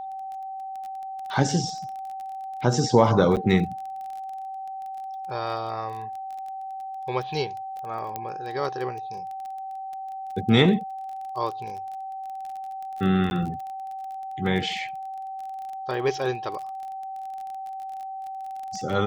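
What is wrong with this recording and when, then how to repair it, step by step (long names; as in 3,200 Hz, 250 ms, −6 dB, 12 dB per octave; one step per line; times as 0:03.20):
surface crackle 23 per second −33 dBFS
whistle 770 Hz −32 dBFS
0:03.36–0:03.37: drop-out 7.9 ms
0:08.16: click −16 dBFS
0:13.30–0:13.31: drop-out 11 ms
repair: click removal
notch filter 770 Hz, Q 30
repair the gap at 0:03.36, 7.9 ms
repair the gap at 0:13.30, 11 ms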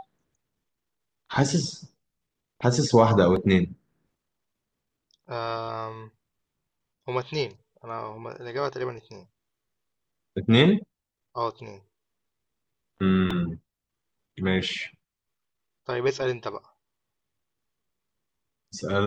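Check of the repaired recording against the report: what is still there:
none of them is left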